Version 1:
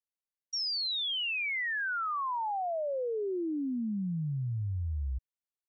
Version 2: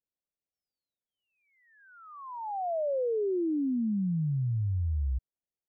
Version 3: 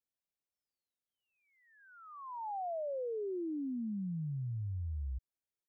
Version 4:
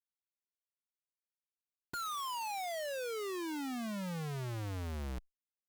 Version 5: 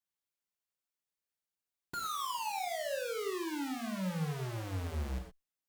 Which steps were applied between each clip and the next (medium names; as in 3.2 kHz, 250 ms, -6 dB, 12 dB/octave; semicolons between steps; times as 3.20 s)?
inverse Chebyshev low-pass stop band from 3.2 kHz, stop band 70 dB; trim +4 dB
compression, threshold -33 dBFS, peak gain reduction 5.5 dB; trim -3.5 dB
Schmitt trigger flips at -55 dBFS; Chebyshev shaper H 8 -21 dB, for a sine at -38.5 dBFS; trim +2 dB
gated-style reverb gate 140 ms flat, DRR 2.5 dB